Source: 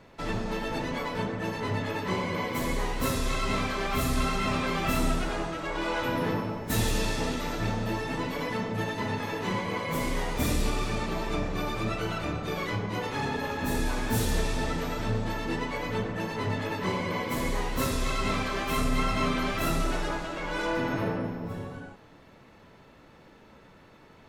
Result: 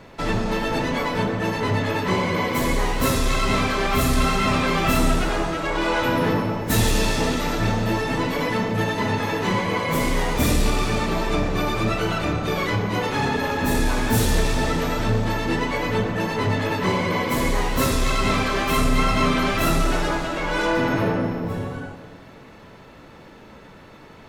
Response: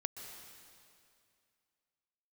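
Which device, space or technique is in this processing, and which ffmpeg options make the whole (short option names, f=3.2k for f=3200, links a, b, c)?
saturated reverb return: -filter_complex "[0:a]asplit=2[a][b];[1:a]atrim=start_sample=2205[c];[b][c]afir=irnorm=-1:irlink=0,asoftclip=type=tanh:threshold=-29dB,volume=-4.5dB[d];[a][d]amix=inputs=2:normalize=0,volume=5.5dB"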